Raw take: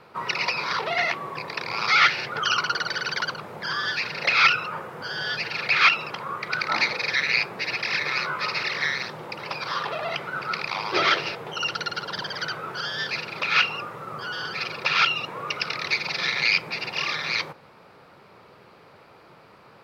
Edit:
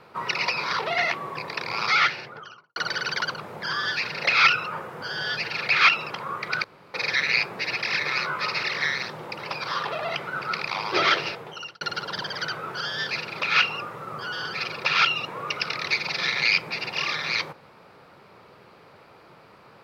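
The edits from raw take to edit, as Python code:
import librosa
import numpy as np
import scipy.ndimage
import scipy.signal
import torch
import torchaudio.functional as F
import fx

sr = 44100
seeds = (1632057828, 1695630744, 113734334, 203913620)

y = fx.studio_fade_out(x, sr, start_s=1.78, length_s=0.98)
y = fx.edit(y, sr, fx.room_tone_fill(start_s=6.64, length_s=0.3),
    fx.fade_out_span(start_s=11.26, length_s=0.55), tone=tone)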